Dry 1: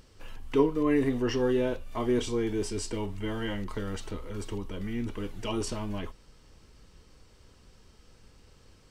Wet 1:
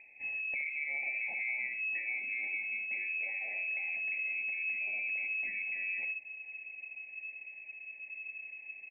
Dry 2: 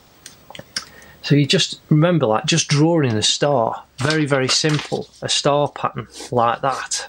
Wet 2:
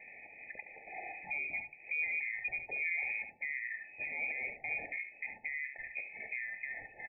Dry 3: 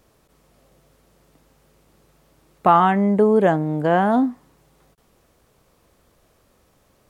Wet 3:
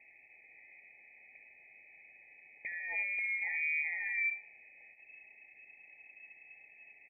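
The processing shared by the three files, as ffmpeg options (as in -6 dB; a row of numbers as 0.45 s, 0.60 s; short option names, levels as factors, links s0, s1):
-filter_complex "[0:a]asubboost=boost=3.5:cutoff=54,alimiter=level_in=1.88:limit=0.0631:level=0:latency=1:release=158,volume=0.531,asplit=2[s0][s1];[s1]aecho=0:1:72:0.376[s2];[s0][s2]amix=inputs=2:normalize=0,lowpass=f=2200:t=q:w=0.5098,lowpass=f=2200:t=q:w=0.6013,lowpass=f=2200:t=q:w=0.9,lowpass=f=2200:t=q:w=2.563,afreqshift=-2600,afftfilt=real='re*eq(mod(floor(b*sr/1024/880),2),0)':imag='im*eq(mod(floor(b*sr/1024/880),2),0)':win_size=1024:overlap=0.75"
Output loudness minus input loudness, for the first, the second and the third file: -4.0 LU, -20.0 LU, -16.0 LU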